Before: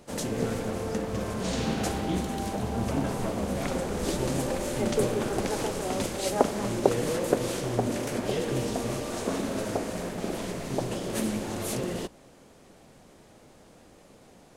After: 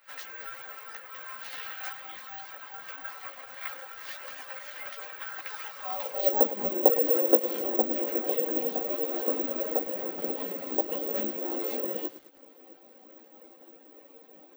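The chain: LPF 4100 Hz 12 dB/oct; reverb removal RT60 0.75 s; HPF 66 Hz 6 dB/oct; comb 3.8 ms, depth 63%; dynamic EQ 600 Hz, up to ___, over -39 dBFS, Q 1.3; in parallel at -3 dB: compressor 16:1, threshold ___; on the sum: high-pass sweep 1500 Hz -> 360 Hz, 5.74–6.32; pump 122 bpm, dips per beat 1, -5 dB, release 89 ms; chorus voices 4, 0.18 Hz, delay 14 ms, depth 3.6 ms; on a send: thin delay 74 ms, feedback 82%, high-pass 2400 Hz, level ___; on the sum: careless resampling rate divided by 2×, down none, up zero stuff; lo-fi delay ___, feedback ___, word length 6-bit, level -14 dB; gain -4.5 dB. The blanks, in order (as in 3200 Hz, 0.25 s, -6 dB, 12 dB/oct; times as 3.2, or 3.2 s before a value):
+3 dB, -37 dBFS, -22 dB, 0.106 s, 55%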